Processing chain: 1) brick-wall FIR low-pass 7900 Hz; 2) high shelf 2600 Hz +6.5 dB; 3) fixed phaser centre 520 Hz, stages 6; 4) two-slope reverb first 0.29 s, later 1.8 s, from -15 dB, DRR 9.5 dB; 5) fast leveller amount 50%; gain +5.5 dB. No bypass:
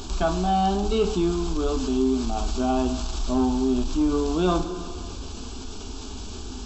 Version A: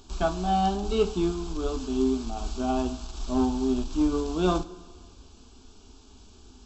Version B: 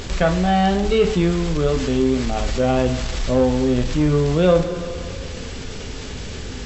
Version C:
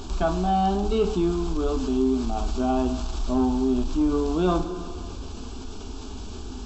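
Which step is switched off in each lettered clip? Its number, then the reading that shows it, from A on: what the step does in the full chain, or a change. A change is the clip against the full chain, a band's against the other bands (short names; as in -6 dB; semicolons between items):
5, crest factor change +2.0 dB; 3, loudness change +5.0 LU; 2, 4 kHz band -4.0 dB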